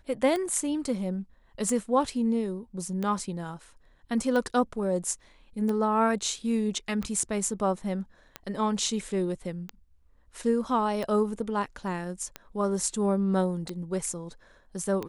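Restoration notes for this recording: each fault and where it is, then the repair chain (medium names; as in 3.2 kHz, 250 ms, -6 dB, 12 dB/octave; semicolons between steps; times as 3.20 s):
tick 45 rpm -19 dBFS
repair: de-click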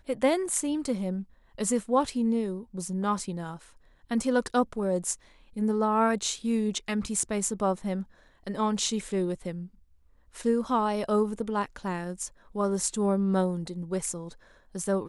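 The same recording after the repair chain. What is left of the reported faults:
nothing left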